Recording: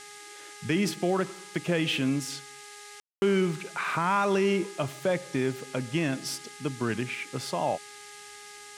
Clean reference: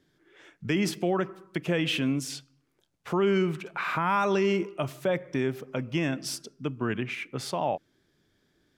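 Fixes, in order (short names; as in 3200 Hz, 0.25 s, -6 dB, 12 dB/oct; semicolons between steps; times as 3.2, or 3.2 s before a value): de-hum 412.7 Hz, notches 5; room tone fill 3–3.22; noise print and reduce 23 dB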